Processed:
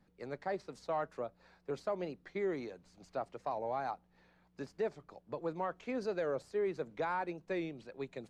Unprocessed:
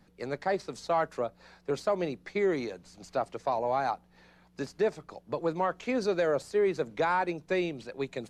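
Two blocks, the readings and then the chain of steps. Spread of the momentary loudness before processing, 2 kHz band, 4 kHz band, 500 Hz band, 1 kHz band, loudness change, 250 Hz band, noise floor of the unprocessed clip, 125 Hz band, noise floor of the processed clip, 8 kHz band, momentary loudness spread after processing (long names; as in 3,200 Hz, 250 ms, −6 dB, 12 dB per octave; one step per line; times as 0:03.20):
10 LU, −9.5 dB, −11.5 dB, −8.0 dB, −8.5 dB, −8.5 dB, −8.0 dB, −62 dBFS, −8.0 dB, −70 dBFS, below −10 dB, 10 LU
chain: high-shelf EQ 3,700 Hz −7 dB
wow of a warped record 45 rpm, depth 100 cents
level −8 dB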